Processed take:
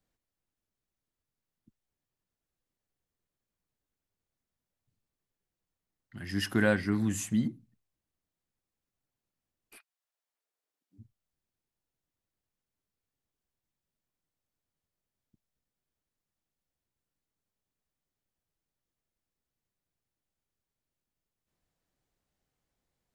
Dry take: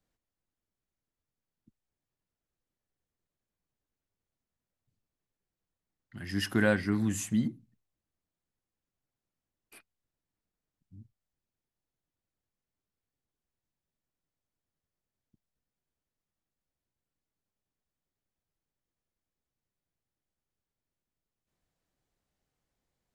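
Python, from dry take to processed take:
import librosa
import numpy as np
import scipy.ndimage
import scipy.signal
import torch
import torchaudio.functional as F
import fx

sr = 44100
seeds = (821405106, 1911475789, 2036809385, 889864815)

y = fx.highpass(x, sr, hz=fx.line((9.76, 790.0), (10.98, 270.0)), slope=24, at=(9.76, 10.98), fade=0.02)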